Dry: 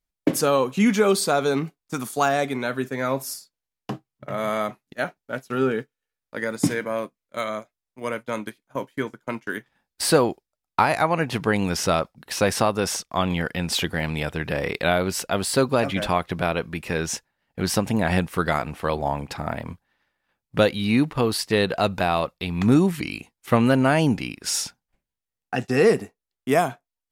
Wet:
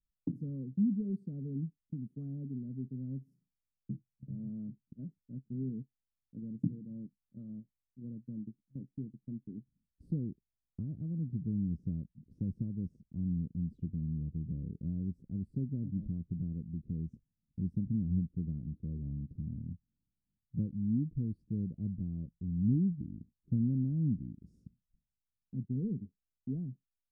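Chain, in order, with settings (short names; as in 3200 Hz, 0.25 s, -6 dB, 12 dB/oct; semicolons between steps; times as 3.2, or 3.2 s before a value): inverse Chebyshev low-pass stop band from 760 Hz, stop band 60 dB; in parallel at +1 dB: compressor, threshold -38 dBFS, peak gain reduction 19 dB; on the sum: gain -8.5 dB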